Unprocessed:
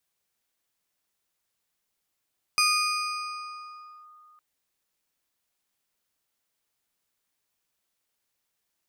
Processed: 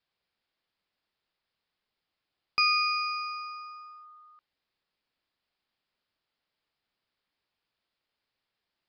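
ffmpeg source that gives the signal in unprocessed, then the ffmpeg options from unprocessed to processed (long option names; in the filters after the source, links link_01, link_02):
-f lavfi -i "aevalsrc='0.126*pow(10,-3*t/2.97)*sin(2*PI*1230*t+1.6*clip(1-t/1.49,0,1)*sin(2*PI*3*1230*t))':duration=1.81:sample_rate=44100"
-af "aresample=11025,aresample=44100"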